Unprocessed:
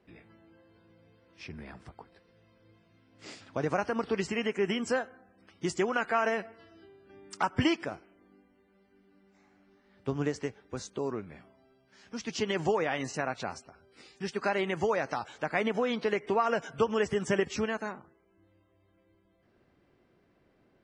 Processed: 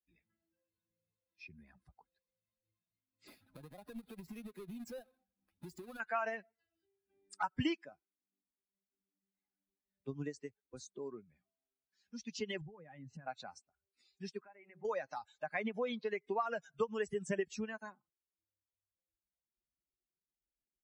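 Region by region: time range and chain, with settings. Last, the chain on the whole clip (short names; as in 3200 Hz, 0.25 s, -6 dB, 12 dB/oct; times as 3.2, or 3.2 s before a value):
3.27–6 half-waves squared off + LPF 3400 Hz 6 dB/oct + compressor 16:1, threshold -34 dBFS
12.61–13.27 tone controls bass +13 dB, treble -13 dB + compressor 5:1, threshold -36 dBFS
14.39–14.85 steep low-pass 2700 Hz 48 dB/oct + de-hum 94.71 Hz, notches 11 + compressor 2.5:1, threshold -44 dBFS
whole clip: per-bin expansion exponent 2; three-band squash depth 40%; gain -3 dB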